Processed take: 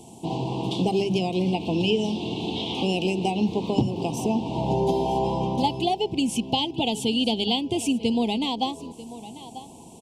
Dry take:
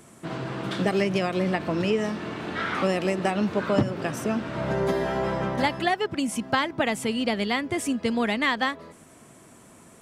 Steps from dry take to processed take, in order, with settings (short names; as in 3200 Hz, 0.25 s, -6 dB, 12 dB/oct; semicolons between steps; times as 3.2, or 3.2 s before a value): high shelf 11000 Hz -9 dB; notches 50/100/150/200 Hz; in parallel at +1 dB: compressor, threshold -31 dBFS, peak gain reduction 14 dB; on the sum: elliptic band-stop 870–2800 Hz, stop band 60 dB; bell 590 Hz -14.5 dB 0.21 oct; on a send: echo 0.942 s -17 dB; on the sum: LFO bell 0.21 Hz 820–3500 Hz +7 dB